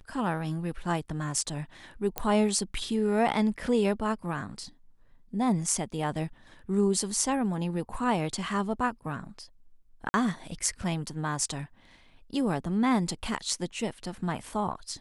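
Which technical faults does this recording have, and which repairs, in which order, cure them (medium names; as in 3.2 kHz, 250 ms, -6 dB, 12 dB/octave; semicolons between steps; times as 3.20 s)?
2.18 s: pop -12 dBFS
10.09–10.14 s: dropout 50 ms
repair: de-click; interpolate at 10.09 s, 50 ms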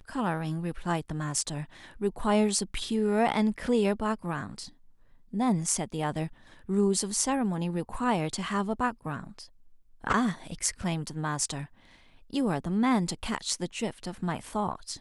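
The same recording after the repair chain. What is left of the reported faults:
nothing left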